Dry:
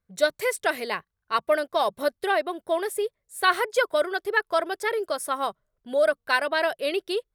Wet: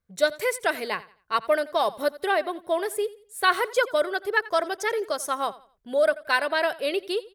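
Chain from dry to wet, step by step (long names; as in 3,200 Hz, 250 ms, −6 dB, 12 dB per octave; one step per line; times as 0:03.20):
0:04.30–0:05.43: parametric band 6,200 Hz +12.5 dB 0.29 octaves
on a send: repeating echo 87 ms, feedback 30%, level −19 dB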